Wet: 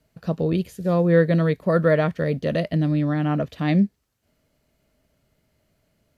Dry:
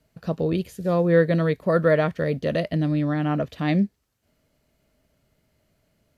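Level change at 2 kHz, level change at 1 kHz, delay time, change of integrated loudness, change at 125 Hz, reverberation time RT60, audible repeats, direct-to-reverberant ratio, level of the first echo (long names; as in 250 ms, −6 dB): 0.0 dB, 0.0 dB, no echo audible, +1.5 dB, +2.5 dB, no reverb audible, no echo audible, no reverb audible, no echo audible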